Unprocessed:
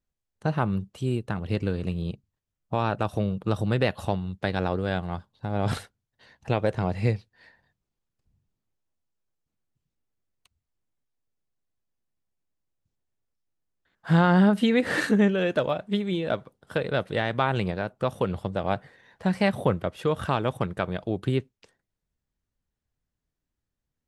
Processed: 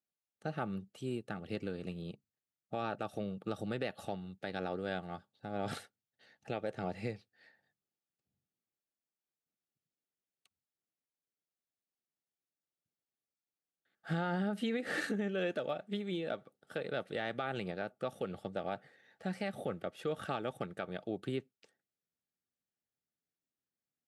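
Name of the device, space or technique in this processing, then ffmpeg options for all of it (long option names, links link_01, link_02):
PA system with an anti-feedback notch: -af "highpass=190,asuperstop=centerf=1000:order=12:qfactor=4.9,alimiter=limit=-17.5dB:level=0:latency=1:release=114,volume=-8.5dB"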